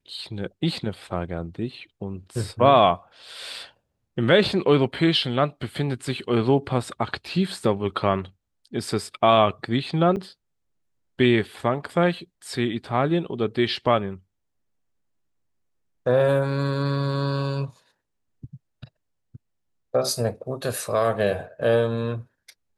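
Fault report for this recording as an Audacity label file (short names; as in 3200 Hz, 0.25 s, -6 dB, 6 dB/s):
10.160000	10.170000	gap 7.9 ms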